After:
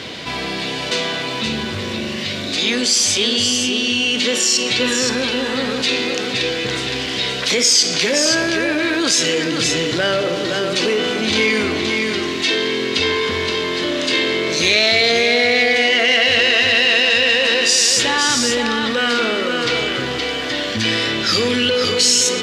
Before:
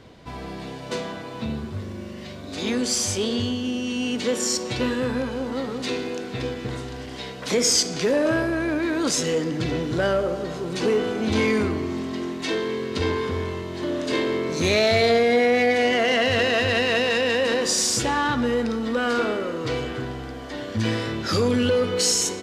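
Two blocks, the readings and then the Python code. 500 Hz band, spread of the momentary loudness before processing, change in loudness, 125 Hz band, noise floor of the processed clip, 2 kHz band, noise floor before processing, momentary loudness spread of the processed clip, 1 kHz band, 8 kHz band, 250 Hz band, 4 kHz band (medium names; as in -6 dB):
+2.5 dB, 14 LU, +7.0 dB, -1.0 dB, -24 dBFS, +10.0 dB, -36 dBFS, 9 LU, +3.5 dB, +8.0 dB, +2.5 dB, +12.5 dB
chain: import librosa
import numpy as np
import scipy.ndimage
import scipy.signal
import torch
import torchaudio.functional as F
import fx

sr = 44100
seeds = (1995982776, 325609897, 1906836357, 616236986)

y = fx.weighting(x, sr, curve='D')
y = y + 10.0 ** (-7.0 / 20.0) * np.pad(y, (int(521 * sr / 1000.0), 0))[:len(y)]
y = fx.env_flatten(y, sr, amount_pct=50)
y = F.gain(torch.from_numpy(y), -3.0).numpy()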